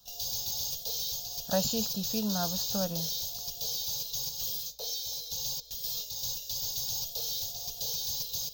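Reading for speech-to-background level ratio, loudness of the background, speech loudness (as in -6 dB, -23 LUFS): -2.0 dB, -32.0 LUFS, -34.0 LUFS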